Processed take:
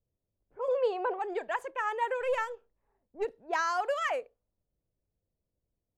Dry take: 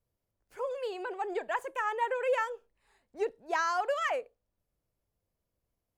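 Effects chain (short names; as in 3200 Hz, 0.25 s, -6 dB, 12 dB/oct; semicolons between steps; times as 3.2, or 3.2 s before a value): 2.21–3.25 half-wave gain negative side -3 dB; low-pass opened by the level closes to 570 Hz, open at -28 dBFS; 0.68–1.19 band shelf 740 Hz +9 dB; ending taper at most 520 dB/s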